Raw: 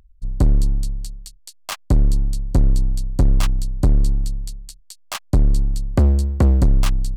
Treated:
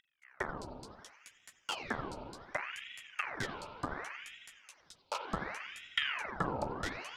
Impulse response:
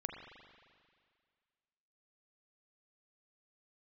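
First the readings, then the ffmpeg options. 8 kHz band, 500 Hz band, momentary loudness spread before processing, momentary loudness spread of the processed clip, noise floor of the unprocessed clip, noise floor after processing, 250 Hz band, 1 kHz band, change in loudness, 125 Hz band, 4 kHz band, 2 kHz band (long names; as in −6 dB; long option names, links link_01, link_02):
−16.5 dB, −11.5 dB, 15 LU, 18 LU, −50 dBFS, −71 dBFS, −20.5 dB, −4.0 dB, −19.5 dB, −30.0 dB, −5.5 dB, +1.0 dB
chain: -filter_complex "[0:a]asplit=3[link_01][link_02][link_03];[link_01]bandpass=frequency=730:width_type=q:width=8,volume=0dB[link_04];[link_02]bandpass=frequency=1090:width_type=q:width=8,volume=-6dB[link_05];[link_03]bandpass=frequency=2440:width_type=q:width=8,volume=-9dB[link_06];[link_04][link_05][link_06]amix=inputs=3:normalize=0,highshelf=frequency=3700:width_type=q:width=1.5:gain=7.5[link_07];[1:a]atrim=start_sample=2205[link_08];[link_07][link_08]afir=irnorm=-1:irlink=0,aeval=exprs='val(0)*sin(2*PI*1400*n/s+1400*0.9/0.68*sin(2*PI*0.68*n/s))':channel_layout=same,volume=7.5dB"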